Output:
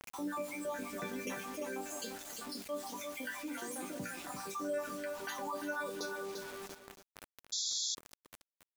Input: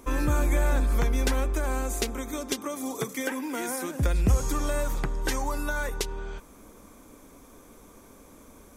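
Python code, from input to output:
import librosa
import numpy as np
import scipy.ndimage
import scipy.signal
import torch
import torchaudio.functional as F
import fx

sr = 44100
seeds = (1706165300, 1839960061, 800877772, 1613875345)

p1 = fx.spec_dropout(x, sr, seeds[0], share_pct=62)
p2 = fx.high_shelf(p1, sr, hz=10000.0, db=-7.0)
p3 = fx.quant_float(p2, sr, bits=4)
p4 = scipy.signal.sosfilt(scipy.signal.butter(4, 140.0, 'highpass', fs=sr, output='sos'), p3)
p5 = fx.hum_notches(p4, sr, base_hz=60, count=4)
p6 = fx.resonator_bank(p5, sr, root=55, chord='major', decay_s=0.21)
p7 = fx.echo_feedback(p6, sr, ms=345, feedback_pct=21, wet_db=-10.0)
p8 = fx.quant_dither(p7, sr, seeds[1], bits=10, dither='none')
p9 = p8 + fx.echo_single(p8, sr, ms=278, db=-20.0, dry=0)
p10 = fx.spec_paint(p9, sr, seeds[2], shape='noise', start_s=7.52, length_s=0.43, low_hz=3300.0, high_hz=7400.0, level_db=-40.0)
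p11 = fx.env_flatten(p10, sr, amount_pct=50)
y = F.gain(torch.from_numpy(p11), 2.0).numpy()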